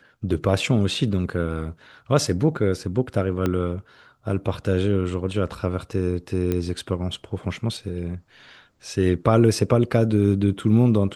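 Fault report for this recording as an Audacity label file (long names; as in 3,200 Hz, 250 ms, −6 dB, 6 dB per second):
3.460000	3.460000	click −11 dBFS
6.520000	6.520000	click −12 dBFS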